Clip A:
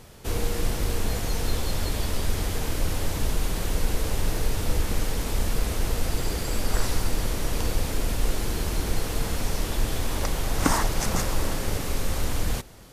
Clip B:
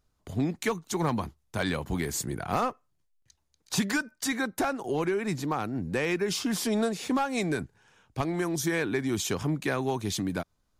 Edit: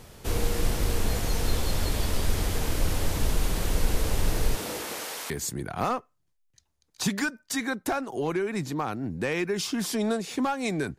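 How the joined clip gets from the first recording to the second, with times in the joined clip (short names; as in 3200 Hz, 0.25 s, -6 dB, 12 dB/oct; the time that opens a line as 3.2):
clip A
4.55–5.3 HPF 200 Hz -> 930 Hz
5.3 switch to clip B from 2.02 s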